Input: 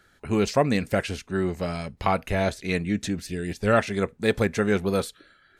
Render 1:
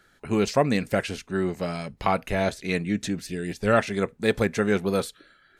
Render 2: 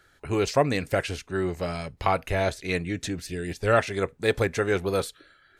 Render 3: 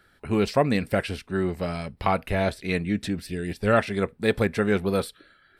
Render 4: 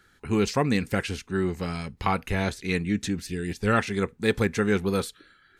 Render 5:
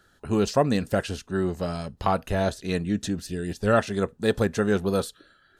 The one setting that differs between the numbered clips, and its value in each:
peaking EQ, frequency: 81 Hz, 210 Hz, 6.6 kHz, 620 Hz, 2.2 kHz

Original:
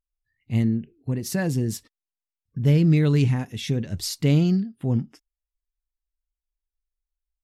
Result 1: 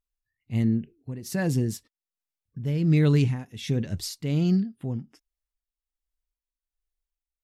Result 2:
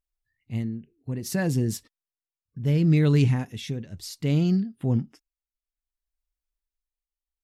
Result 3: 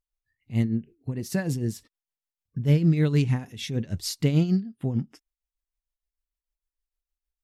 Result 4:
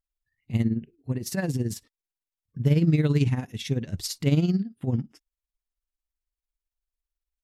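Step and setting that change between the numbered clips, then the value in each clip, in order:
tremolo, rate: 1.3 Hz, 0.63 Hz, 6.6 Hz, 18 Hz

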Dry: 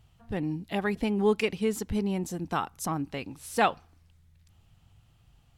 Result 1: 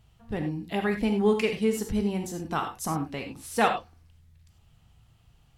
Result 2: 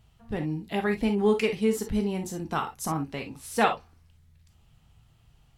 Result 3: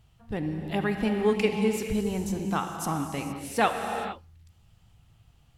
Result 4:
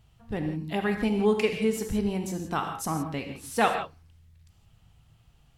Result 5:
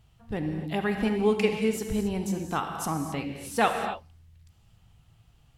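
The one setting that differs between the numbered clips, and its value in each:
gated-style reverb, gate: 120 ms, 80 ms, 490 ms, 190 ms, 300 ms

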